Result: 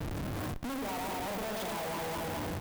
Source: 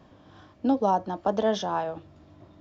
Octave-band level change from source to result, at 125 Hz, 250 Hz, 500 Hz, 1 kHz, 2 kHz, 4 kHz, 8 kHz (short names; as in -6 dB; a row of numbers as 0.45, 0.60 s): +2.0 dB, -9.0 dB, -9.5 dB, -9.0 dB, +2.5 dB, -1.5 dB, n/a